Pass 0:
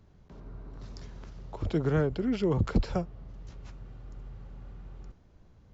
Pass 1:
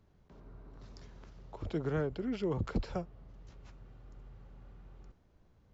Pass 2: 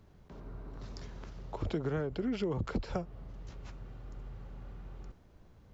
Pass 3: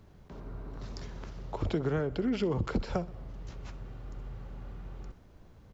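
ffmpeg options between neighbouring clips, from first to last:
-af "bass=f=250:g=-3,treble=f=4k:g=-2,volume=-5.5dB"
-af "acompressor=threshold=-37dB:ratio=6,volume=7dB"
-af "aecho=1:1:63|126|189|252|315:0.1|0.06|0.036|0.0216|0.013,volume=3.5dB"

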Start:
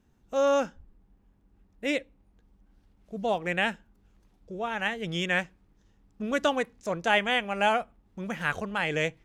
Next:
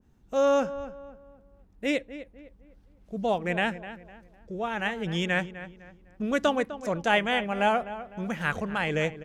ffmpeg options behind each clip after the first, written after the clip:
-filter_complex "[0:a]lowshelf=f=360:g=4,asplit=2[a][b];[b]adelay=253,lowpass=f=2k:p=1,volume=-13dB,asplit=2[c][d];[d]adelay=253,lowpass=f=2k:p=1,volume=0.37,asplit=2[e][f];[f]adelay=253,lowpass=f=2k:p=1,volume=0.37,asplit=2[g][h];[h]adelay=253,lowpass=f=2k:p=1,volume=0.37[i];[a][c][e][g][i]amix=inputs=5:normalize=0,adynamicequalizer=threshold=0.0158:dfrequency=1800:dqfactor=0.7:tfrequency=1800:tqfactor=0.7:attack=5:release=100:ratio=0.375:range=2.5:mode=cutabove:tftype=highshelf"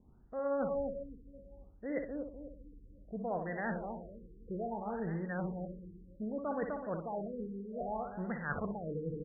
-filter_complex "[0:a]areverse,acompressor=threshold=-33dB:ratio=16,areverse,asplit=2[a][b];[b]adelay=61,lowpass=f=3.3k:p=1,volume=-6.5dB,asplit=2[c][d];[d]adelay=61,lowpass=f=3.3k:p=1,volume=0.39,asplit=2[e][f];[f]adelay=61,lowpass=f=3.3k:p=1,volume=0.39,asplit=2[g][h];[h]adelay=61,lowpass=f=3.3k:p=1,volume=0.39,asplit=2[i][j];[j]adelay=61,lowpass=f=3.3k:p=1,volume=0.39[k];[a][c][e][g][i][k]amix=inputs=6:normalize=0,afftfilt=real='re*lt(b*sr/1024,490*pow(2100/490,0.5+0.5*sin(2*PI*0.63*pts/sr)))':imag='im*lt(b*sr/1024,490*pow(2100/490,0.5+0.5*sin(2*PI*0.63*pts/sr)))':win_size=1024:overlap=0.75"

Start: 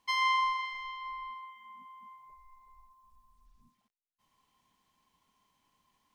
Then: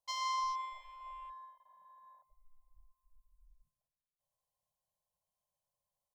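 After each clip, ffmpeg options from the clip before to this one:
-af "aecho=1:1:115|230|345|460|575|690:0.188|0.109|0.0634|0.0368|0.0213|0.0124,afwtdn=0.00631,firequalizer=gain_entry='entry(150,0);entry(280,-29);entry(550,11);entry(980,-8);entry(1600,-19);entry(4100,-4);entry(9800,7)':delay=0.05:min_phase=1,volume=1dB"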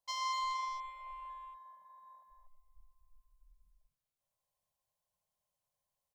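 -af "aecho=1:1:245:0.531"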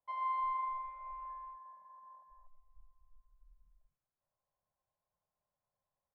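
-af "lowpass=f=1.7k:w=0.5412,lowpass=f=1.7k:w=1.3066,volume=1.5dB"

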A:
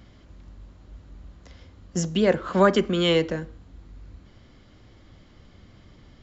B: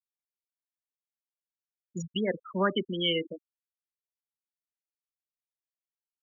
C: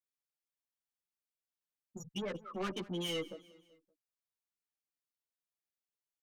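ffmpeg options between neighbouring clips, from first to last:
-af "highpass=f=400:p=1,afftfilt=real='re*gte(hypot(re,im),0.126)':imag='im*gte(hypot(re,im),0.126)':win_size=1024:overlap=0.75,equalizer=f=710:w=0.58:g=-11.5,volume=1.5dB"
-filter_complex "[0:a]asoftclip=type=tanh:threshold=-31.5dB,aecho=1:1:190|380|570:0.1|0.046|0.0212,asplit=2[a][b];[b]adelay=10.1,afreqshift=-1.6[c];[a][c]amix=inputs=2:normalize=1"

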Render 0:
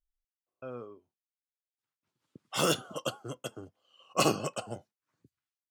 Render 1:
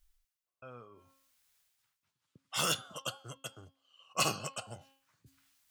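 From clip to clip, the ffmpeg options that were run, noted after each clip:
-af "equalizer=f=340:t=o:w=2.2:g=-13,bandreject=f=270.7:t=h:w=4,bandreject=f=541.4:t=h:w=4,bandreject=f=812.1:t=h:w=4,bandreject=f=1.0828k:t=h:w=4,bandreject=f=1.3535k:t=h:w=4,bandreject=f=1.6242k:t=h:w=4,bandreject=f=1.8949k:t=h:w=4,bandreject=f=2.1656k:t=h:w=4,bandreject=f=2.4363k:t=h:w=4,bandreject=f=2.707k:t=h:w=4,bandreject=f=2.9777k:t=h:w=4,bandreject=f=3.2484k:t=h:w=4,bandreject=f=3.5191k:t=h:w=4,bandreject=f=3.7898k:t=h:w=4,bandreject=f=4.0605k:t=h:w=4,bandreject=f=4.3312k:t=h:w=4,bandreject=f=4.6019k:t=h:w=4,bandreject=f=4.8726k:t=h:w=4,areverse,acompressor=mode=upward:threshold=-52dB:ratio=2.5,areverse"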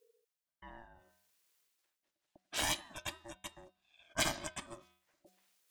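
-af "aeval=exprs='val(0)*sin(2*PI*460*n/s)':c=same"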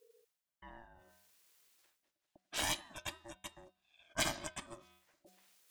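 -af "areverse,acompressor=mode=upward:threshold=-57dB:ratio=2.5,areverse,aeval=exprs='0.168*(cos(1*acos(clip(val(0)/0.168,-1,1)))-cos(1*PI/2))+0.00422*(cos(8*acos(clip(val(0)/0.168,-1,1)))-cos(8*PI/2))':c=same,volume=-1.5dB"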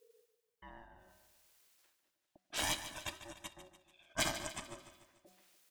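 -af "aecho=1:1:146|292|438|584|730:0.251|0.126|0.0628|0.0314|0.0157"

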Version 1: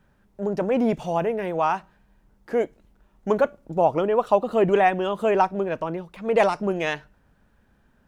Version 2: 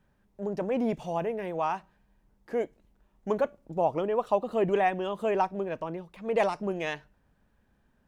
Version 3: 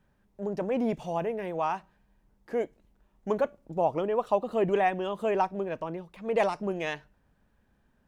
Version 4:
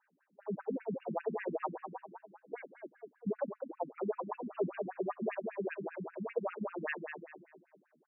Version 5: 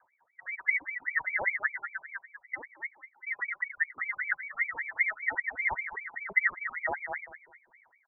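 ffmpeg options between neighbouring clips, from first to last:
-af "equalizer=f=1.4k:t=o:w=0.21:g=-4.5,volume=-6.5dB"
-af anull
-filter_complex "[0:a]alimiter=level_in=0.5dB:limit=-24dB:level=0:latency=1:release=317,volume=-0.5dB,asplit=2[a][b];[b]adelay=215,lowpass=f=2k:p=1,volume=-5.5dB,asplit=2[c][d];[d]adelay=215,lowpass=f=2k:p=1,volume=0.47,asplit=2[e][f];[f]adelay=215,lowpass=f=2k:p=1,volume=0.47,asplit=2[g][h];[h]adelay=215,lowpass=f=2k:p=1,volume=0.47,asplit=2[i][j];[j]adelay=215,lowpass=f=2k:p=1,volume=0.47,asplit=2[k][l];[l]adelay=215,lowpass=f=2k:p=1,volume=0.47[m];[a][c][e][g][i][k][m]amix=inputs=7:normalize=0,afftfilt=real='re*between(b*sr/1024,210*pow(2100/210,0.5+0.5*sin(2*PI*5.1*pts/sr))/1.41,210*pow(2100/210,0.5+0.5*sin(2*PI*5.1*pts/sr))*1.41)':imag='im*between(b*sr/1024,210*pow(2100/210,0.5+0.5*sin(2*PI*5.1*pts/sr))/1.41,210*pow(2100/210,0.5+0.5*sin(2*PI*5.1*pts/sr))*1.41)':win_size=1024:overlap=0.75,volume=3dB"
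-af "aphaser=in_gain=1:out_gain=1:delay=1.9:decay=0.54:speed=1.4:type=sinusoidal,aemphasis=mode=production:type=bsi,lowpass=f=2.1k:t=q:w=0.5098,lowpass=f=2.1k:t=q:w=0.6013,lowpass=f=2.1k:t=q:w=0.9,lowpass=f=2.1k:t=q:w=2.563,afreqshift=-2500,volume=5dB"

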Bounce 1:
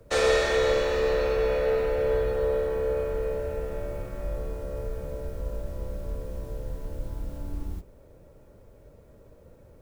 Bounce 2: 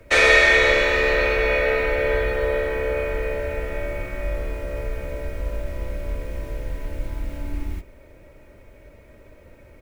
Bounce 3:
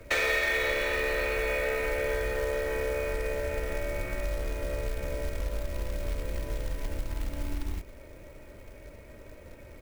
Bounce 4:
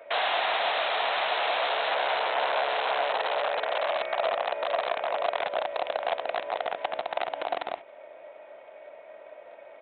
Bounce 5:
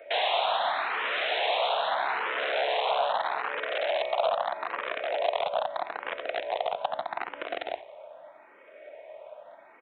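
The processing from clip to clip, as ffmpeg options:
-af "equalizer=f=2.2k:t=o:w=0.87:g=15,aecho=1:1:3.2:0.36,volume=3.5dB"
-af "acompressor=threshold=-29dB:ratio=3,acrusher=bits=4:mode=log:mix=0:aa=0.000001"
-af "aresample=8000,aeval=exprs='(mod(17.8*val(0)+1,2)-1)/17.8':c=same,aresample=44100,highpass=f=690:t=q:w=4.9"
-filter_complex "[0:a]aecho=1:1:88|176|264|352:0.106|0.0498|0.0234|0.011,asplit=2[a][b];[b]afreqshift=0.79[c];[a][c]amix=inputs=2:normalize=1,volume=2dB"

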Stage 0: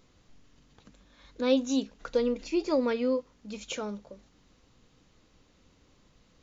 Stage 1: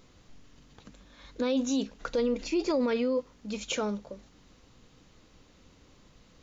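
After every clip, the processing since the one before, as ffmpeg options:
-af "alimiter=level_in=1dB:limit=-24dB:level=0:latency=1:release=12,volume=-1dB,volume=4.5dB"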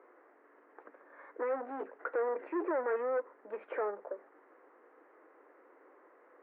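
-af "asoftclip=type=tanh:threshold=-33dB,asuperpass=centerf=800:order=12:qfactor=0.51,volume=4.5dB"

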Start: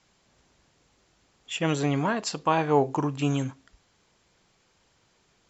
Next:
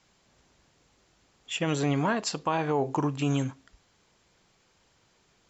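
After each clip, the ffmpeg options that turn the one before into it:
-af "alimiter=limit=-16dB:level=0:latency=1:release=63"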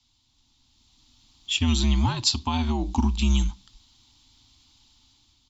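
-af "afreqshift=-78,firequalizer=gain_entry='entry(110,0);entry(170,-13);entry(250,0);entry(470,-29);entry(880,-7);entry(1600,-18);entry(3600,6);entry(6500,-3)':delay=0.05:min_phase=1,dynaudnorm=f=340:g=5:m=9dB"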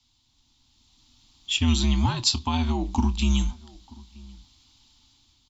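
-filter_complex "[0:a]asplit=2[a][b];[b]adelay=25,volume=-14dB[c];[a][c]amix=inputs=2:normalize=0,asplit=2[d][e];[e]adelay=932.9,volume=-23dB,highshelf=f=4k:g=-21[f];[d][f]amix=inputs=2:normalize=0"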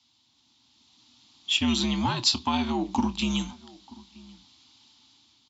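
-filter_complex "[0:a]asplit=2[a][b];[b]asoftclip=type=tanh:threshold=-25dB,volume=-8dB[c];[a][c]amix=inputs=2:normalize=0,highpass=180,lowpass=6.1k"

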